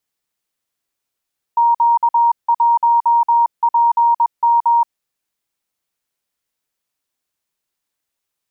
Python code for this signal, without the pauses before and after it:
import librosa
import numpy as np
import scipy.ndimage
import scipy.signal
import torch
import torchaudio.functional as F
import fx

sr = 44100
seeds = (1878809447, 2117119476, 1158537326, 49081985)

y = fx.morse(sr, text='Q1PM', wpm=21, hz=938.0, level_db=-9.5)